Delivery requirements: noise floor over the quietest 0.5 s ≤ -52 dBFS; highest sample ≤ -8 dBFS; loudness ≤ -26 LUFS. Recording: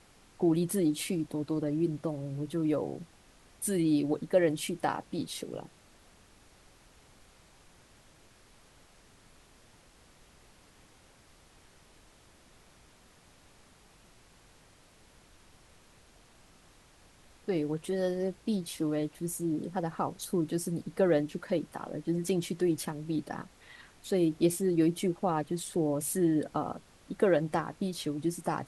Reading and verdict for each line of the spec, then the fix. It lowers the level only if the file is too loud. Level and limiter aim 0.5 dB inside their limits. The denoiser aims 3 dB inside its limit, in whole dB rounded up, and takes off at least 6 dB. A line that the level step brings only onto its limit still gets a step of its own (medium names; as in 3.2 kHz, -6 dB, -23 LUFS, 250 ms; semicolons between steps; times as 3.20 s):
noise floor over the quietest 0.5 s -60 dBFS: pass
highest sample -14.0 dBFS: pass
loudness -31.5 LUFS: pass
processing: none needed